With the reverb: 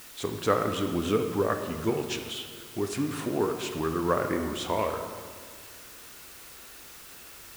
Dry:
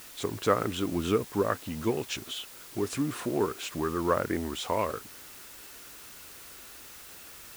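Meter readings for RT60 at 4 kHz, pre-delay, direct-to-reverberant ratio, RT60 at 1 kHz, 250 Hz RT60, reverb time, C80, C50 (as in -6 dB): 1.3 s, 22 ms, 5.0 dB, 1.8 s, 2.1 s, 1.9 s, 7.5 dB, 6.5 dB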